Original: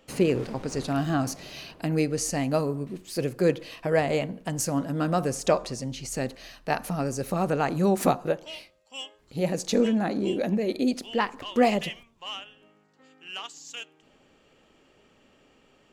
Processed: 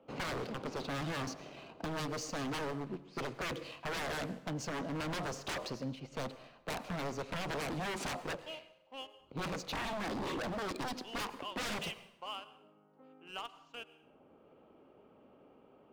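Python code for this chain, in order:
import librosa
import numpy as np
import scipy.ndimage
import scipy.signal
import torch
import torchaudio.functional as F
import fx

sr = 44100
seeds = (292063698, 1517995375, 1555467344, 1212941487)

y = fx.highpass(x, sr, hz=230.0, slope=6)
y = fx.env_lowpass(y, sr, base_hz=1100.0, full_db=-20.5)
y = scipy.signal.sosfilt(scipy.signal.butter(2, 6100.0, 'lowpass', fs=sr, output='sos'), y)
y = fx.peak_eq(y, sr, hz=1800.0, db=-12.0, octaves=0.27)
y = fx.leveller(y, sr, passes=1)
y = 10.0 ** (-26.0 / 20.0) * (np.abs((y / 10.0 ** (-26.0 / 20.0) + 3.0) % 4.0 - 2.0) - 1.0)
y = fx.rev_plate(y, sr, seeds[0], rt60_s=0.74, hf_ratio=0.8, predelay_ms=80, drr_db=16.5)
y = fx.band_squash(y, sr, depth_pct=40)
y = F.gain(torch.from_numpy(y), -6.5).numpy()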